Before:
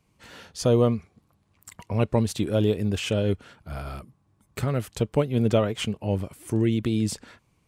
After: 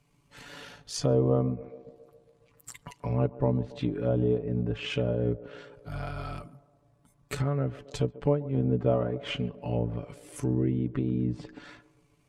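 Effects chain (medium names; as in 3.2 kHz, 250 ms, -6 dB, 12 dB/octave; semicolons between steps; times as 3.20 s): low-pass that closes with the level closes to 1.1 kHz, closed at -20 dBFS; band-passed feedback delay 86 ms, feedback 64%, band-pass 520 Hz, level -17.5 dB; granular stretch 1.6×, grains 37 ms; in parallel at -1 dB: compression, threshold -33 dBFS, peak gain reduction 16 dB; on the sum: trim -4.5 dB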